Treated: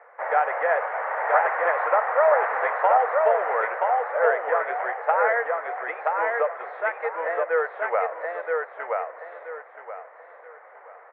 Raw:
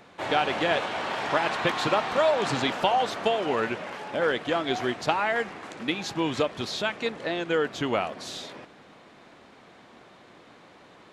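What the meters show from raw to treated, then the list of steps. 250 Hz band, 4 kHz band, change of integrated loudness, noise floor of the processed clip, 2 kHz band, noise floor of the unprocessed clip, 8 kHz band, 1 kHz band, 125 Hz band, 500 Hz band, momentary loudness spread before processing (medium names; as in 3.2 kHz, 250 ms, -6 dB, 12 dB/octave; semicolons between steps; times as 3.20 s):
under -20 dB, under -25 dB, +3.0 dB, -49 dBFS, +4.0 dB, -53 dBFS, under -35 dB, +5.5 dB, under -40 dB, +4.0 dB, 9 LU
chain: Chebyshev band-pass 480–2000 Hz, order 4; feedback delay 976 ms, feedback 29%, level -3 dB; trim +4 dB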